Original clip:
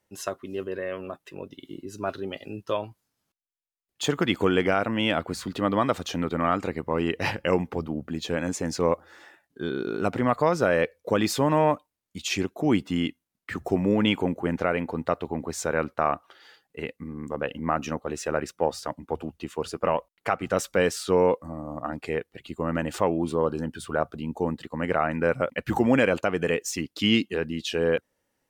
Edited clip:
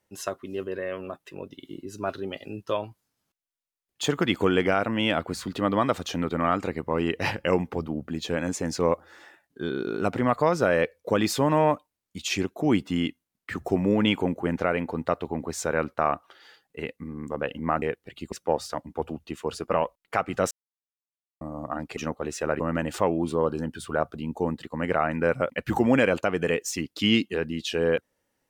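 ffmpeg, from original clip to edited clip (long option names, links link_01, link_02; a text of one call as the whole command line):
ffmpeg -i in.wav -filter_complex "[0:a]asplit=7[link_01][link_02][link_03][link_04][link_05][link_06][link_07];[link_01]atrim=end=17.822[link_08];[link_02]atrim=start=22.098:end=22.602[link_09];[link_03]atrim=start=18.448:end=20.64,asetpts=PTS-STARTPTS,afade=type=out:start_time=2.188:duration=0.004:curve=hsin[link_10];[link_04]atrim=start=20.64:end=21.54,asetpts=PTS-STARTPTS,volume=0[link_11];[link_05]atrim=start=21.54:end=22.102,asetpts=PTS-STARTPTS,afade=type=in:duration=0.004:curve=hsin[link_12];[link_06]atrim=start=17.818:end=18.452[link_13];[link_07]atrim=start=22.598[link_14];[link_08][link_09]acrossfade=duration=0.004:curve1=hsin:curve2=hsin[link_15];[link_10][link_11][link_12]concat=n=3:v=0:a=1[link_16];[link_15][link_16]acrossfade=duration=0.004:curve1=hsin:curve2=hsin[link_17];[link_17][link_13]acrossfade=duration=0.004:curve1=hsin:curve2=hsin[link_18];[link_18][link_14]acrossfade=duration=0.004:curve1=hsin:curve2=hsin" out.wav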